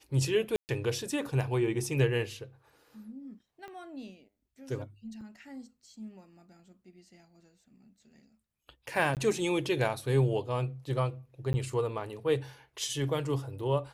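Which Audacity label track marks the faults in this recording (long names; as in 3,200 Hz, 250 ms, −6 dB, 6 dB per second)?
0.560000	0.690000	drop-out 129 ms
3.680000	3.680000	click −32 dBFS
5.210000	5.210000	drop-out 4.4 ms
9.150000	9.170000	drop-out 18 ms
11.530000	11.540000	drop-out 10 ms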